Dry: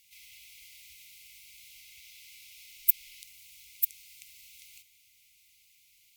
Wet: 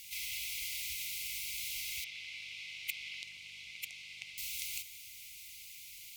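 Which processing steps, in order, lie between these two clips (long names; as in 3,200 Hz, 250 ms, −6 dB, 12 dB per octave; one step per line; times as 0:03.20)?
0:02.04–0:04.38: band-pass filter 120–2,900 Hz
level +13 dB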